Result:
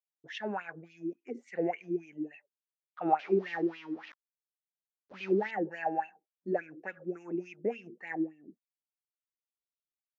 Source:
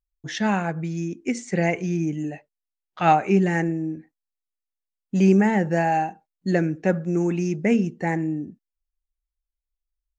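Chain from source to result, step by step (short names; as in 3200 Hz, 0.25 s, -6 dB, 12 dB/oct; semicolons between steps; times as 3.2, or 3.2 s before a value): 3.19–5.51 delta modulation 32 kbps, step -27 dBFS; dynamic EQ 350 Hz, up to +3 dB, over -26 dBFS, Q 0.75; wah 3.5 Hz 320–2800 Hz, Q 4.9; gain -2.5 dB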